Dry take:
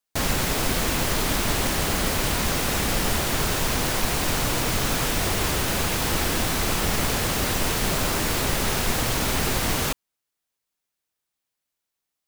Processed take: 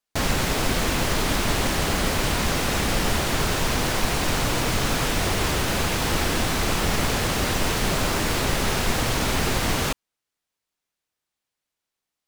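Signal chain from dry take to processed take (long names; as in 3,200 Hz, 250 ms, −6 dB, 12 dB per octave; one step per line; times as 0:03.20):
high-shelf EQ 9,800 Hz −9 dB
level +1.5 dB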